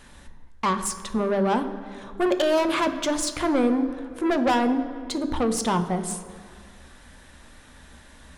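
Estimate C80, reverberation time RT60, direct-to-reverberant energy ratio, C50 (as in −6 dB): 12.0 dB, 2.2 s, 7.0 dB, 10.5 dB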